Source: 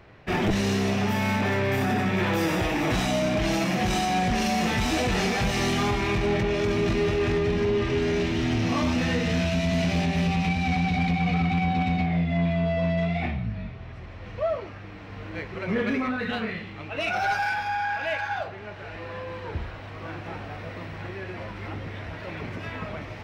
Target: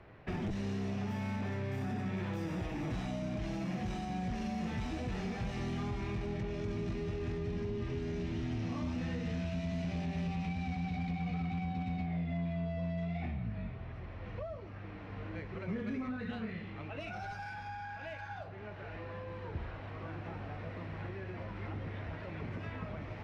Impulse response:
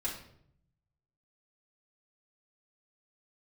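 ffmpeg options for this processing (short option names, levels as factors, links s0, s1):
-filter_complex "[0:a]aemphasis=mode=reproduction:type=75fm,acrossover=split=230|5000[s0][s1][s2];[s0]acompressor=threshold=0.0282:ratio=4[s3];[s1]acompressor=threshold=0.0112:ratio=4[s4];[s2]acompressor=threshold=0.00158:ratio=4[s5];[s3][s4][s5]amix=inputs=3:normalize=0,volume=0.562"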